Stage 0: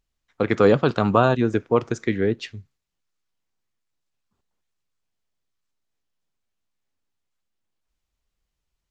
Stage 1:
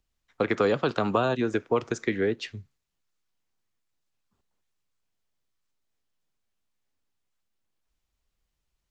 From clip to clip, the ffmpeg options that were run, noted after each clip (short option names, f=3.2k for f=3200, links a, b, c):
-filter_complex "[0:a]acrossover=split=250|620|1900[a][b][c][d];[a]acompressor=threshold=-36dB:ratio=4[e];[b]acompressor=threshold=-25dB:ratio=4[f];[c]acompressor=threshold=-29dB:ratio=4[g];[d]acompressor=threshold=-34dB:ratio=4[h];[e][f][g][h]amix=inputs=4:normalize=0"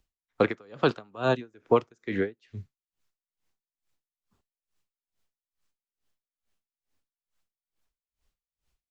-af "aeval=exprs='val(0)*pow(10,-35*(0.5-0.5*cos(2*PI*2.3*n/s))/20)':c=same,volume=4dB"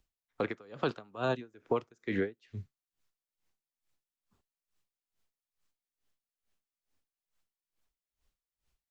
-af "alimiter=limit=-17.5dB:level=0:latency=1:release=205,volume=-2dB"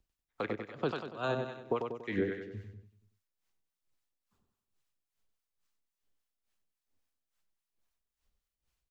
-filter_complex "[0:a]asplit=2[a][b];[b]aecho=0:1:95|190|285|380|475|570:0.596|0.286|0.137|0.0659|0.0316|0.0152[c];[a][c]amix=inputs=2:normalize=0,acrossover=split=710[d][e];[d]aeval=exprs='val(0)*(1-0.5/2+0.5/2*cos(2*PI*3.6*n/s))':c=same[f];[e]aeval=exprs='val(0)*(1-0.5/2-0.5/2*cos(2*PI*3.6*n/s))':c=same[g];[f][g]amix=inputs=2:normalize=0"